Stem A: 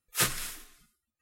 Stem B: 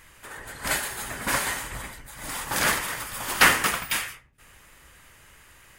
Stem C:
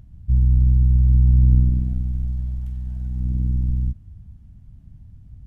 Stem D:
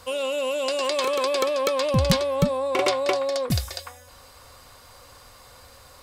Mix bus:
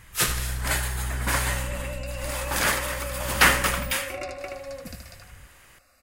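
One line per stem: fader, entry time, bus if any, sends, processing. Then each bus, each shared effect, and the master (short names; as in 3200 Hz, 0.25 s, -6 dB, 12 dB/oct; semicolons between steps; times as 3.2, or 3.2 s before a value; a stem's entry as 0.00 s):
+3.0 dB, 0.00 s, no send, echo send -10.5 dB, dry
-0.5 dB, 0.00 s, no send, no echo send, dry
-7.0 dB, 0.00 s, no send, no echo send, compressor 2:1, threshold -27 dBFS, peak gain reduction 10 dB
-12.0 dB, 1.35 s, no send, echo send -4 dB, bell 2700 Hz +14 dB 0.49 oct; fixed phaser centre 640 Hz, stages 8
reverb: off
echo: feedback echo 76 ms, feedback 34%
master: dry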